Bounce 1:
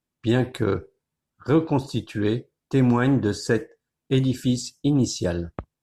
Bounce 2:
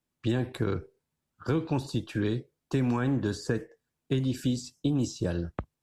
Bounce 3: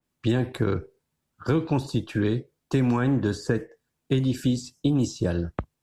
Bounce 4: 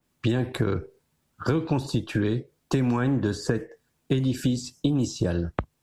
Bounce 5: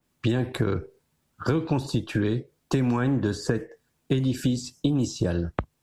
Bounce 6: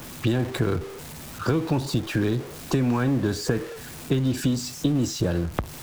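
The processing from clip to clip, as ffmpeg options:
-filter_complex "[0:a]acrossover=split=260|1500[a][b][c];[a]acompressor=threshold=-28dB:ratio=4[d];[b]acompressor=threshold=-32dB:ratio=4[e];[c]acompressor=threshold=-42dB:ratio=4[f];[d][e][f]amix=inputs=3:normalize=0"
-af "adynamicequalizer=threshold=0.00398:dfrequency=2700:dqfactor=0.7:tfrequency=2700:tqfactor=0.7:attack=5:release=100:ratio=0.375:range=2:mode=cutabove:tftype=highshelf,volume=4.5dB"
-af "acompressor=threshold=-31dB:ratio=2.5,volume=7dB"
-af anull
-af "aeval=exprs='val(0)+0.5*0.0224*sgn(val(0))':c=same"

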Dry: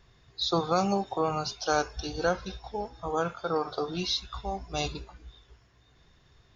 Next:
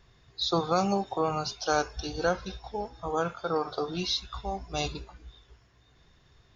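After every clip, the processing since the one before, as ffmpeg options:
-af anull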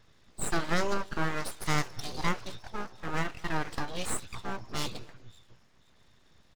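-filter_complex "[0:a]aeval=exprs='abs(val(0))':c=same,asplit=2[a][b];[b]adelay=227.4,volume=-25dB,highshelf=f=4k:g=-5.12[c];[a][c]amix=inputs=2:normalize=0"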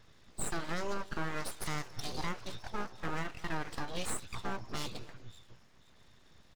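-af "alimiter=level_in=0.5dB:limit=-24dB:level=0:latency=1:release=320,volume=-0.5dB,volume=1dB"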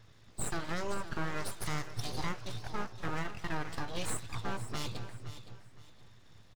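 -af "equalizer=f=110:t=o:w=0.41:g=10.5,aecho=1:1:516|1032|1548:0.224|0.0627|0.0176"

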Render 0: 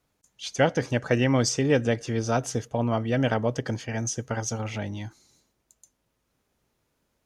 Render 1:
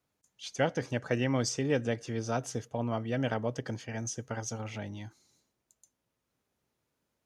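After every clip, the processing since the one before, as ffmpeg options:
-af "highpass=69,volume=-7dB"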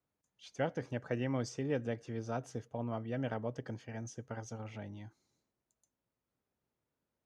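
-af "highshelf=f=2.9k:g=-10,volume=-5.5dB"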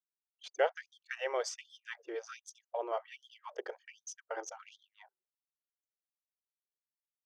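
-af "anlmdn=0.00158,afftfilt=real='re*gte(b*sr/1024,320*pow(3200/320,0.5+0.5*sin(2*PI*1.3*pts/sr)))':imag='im*gte(b*sr/1024,320*pow(3200/320,0.5+0.5*sin(2*PI*1.3*pts/sr)))':win_size=1024:overlap=0.75,volume=6.5dB"

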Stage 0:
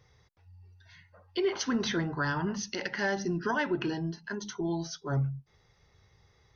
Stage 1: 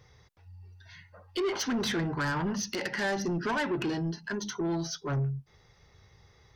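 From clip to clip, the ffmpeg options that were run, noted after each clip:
-af "asoftclip=type=tanh:threshold=-30dB,volume=4.5dB"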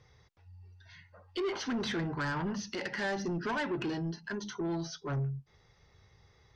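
-filter_complex "[0:a]lowpass=7.2k,acrossover=split=4900[a][b];[b]alimiter=level_in=16dB:limit=-24dB:level=0:latency=1:release=31,volume=-16dB[c];[a][c]amix=inputs=2:normalize=0,volume=-3.5dB"

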